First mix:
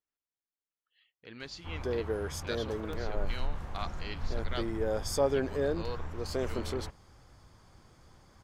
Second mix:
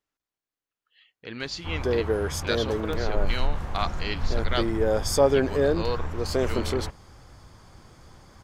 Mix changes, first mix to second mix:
speech +10.5 dB; background +8.0 dB

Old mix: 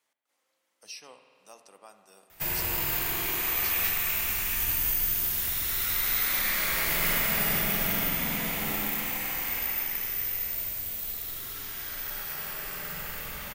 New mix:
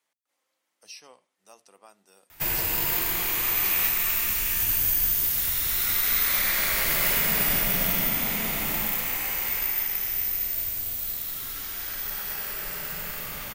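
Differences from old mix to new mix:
background +6.5 dB; reverb: off

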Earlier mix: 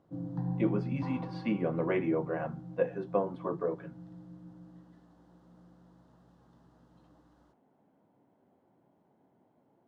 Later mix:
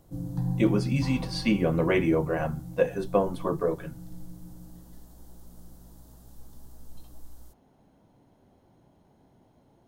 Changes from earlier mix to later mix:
speech +5.5 dB; master: remove BPF 180–2000 Hz

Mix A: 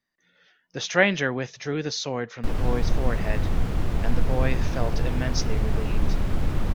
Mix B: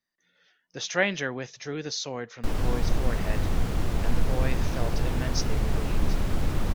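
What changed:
speech -5.0 dB; master: add tone controls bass -2 dB, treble +5 dB

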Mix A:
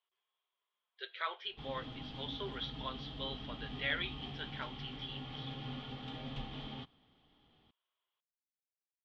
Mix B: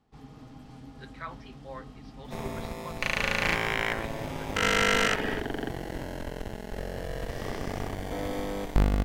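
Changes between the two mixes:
first sound: entry -1.45 s; second sound: unmuted; master: remove synth low-pass 3300 Hz, resonance Q 8.6

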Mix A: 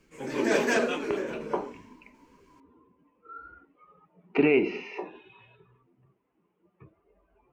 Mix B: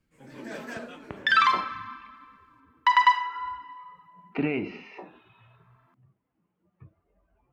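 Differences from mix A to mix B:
first sound -9.0 dB; second sound: unmuted; master: add fifteen-band EQ 100 Hz +8 dB, 400 Hz -11 dB, 1000 Hz -5 dB, 2500 Hz -6 dB, 6300 Hz -8 dB

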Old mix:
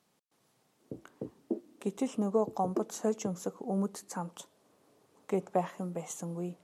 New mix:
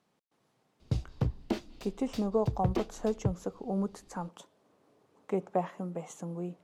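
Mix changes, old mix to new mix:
background: remove Butterworth band-pass 360 Hz, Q 1.3; master: add LPF 3000 Hz 6 dB/oct

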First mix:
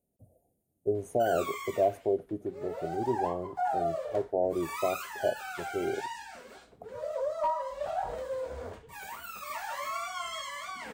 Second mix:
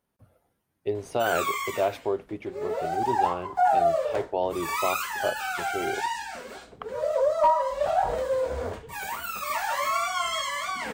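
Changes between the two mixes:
speech: remove Chebyshev band-stop 710–6900 Hz, order 4; background +9.0 dB

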